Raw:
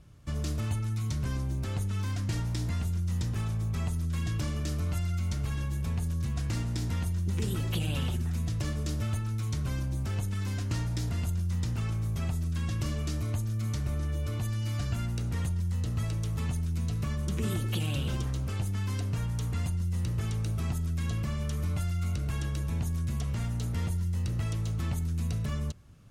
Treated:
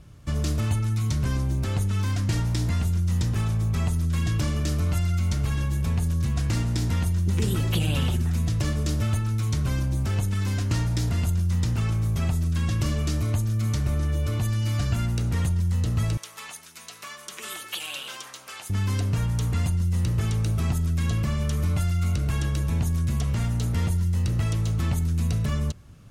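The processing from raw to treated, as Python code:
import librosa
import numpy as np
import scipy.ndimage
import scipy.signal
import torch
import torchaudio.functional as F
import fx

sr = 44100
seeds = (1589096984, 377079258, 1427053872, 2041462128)

y = fx.highpass(x, sr, hz=990.0, slope=12, at=(16.17, 18.7))
y = y * 10.0 ** (6.5 / 20.0)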